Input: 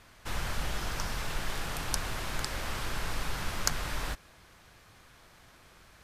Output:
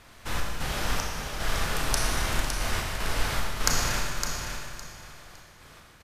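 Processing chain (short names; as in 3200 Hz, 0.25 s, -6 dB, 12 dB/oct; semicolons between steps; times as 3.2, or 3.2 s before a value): step gate "xx.xx..xxxxx.x." 75 bpm -12 dB; on a send: feedback echo 0.56 s, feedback 22%, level -7 dB; on the sum: Schroeder reverb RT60 1.7 s, combs from 26 ms, DRR -0.5 dB; gain +3.5 dB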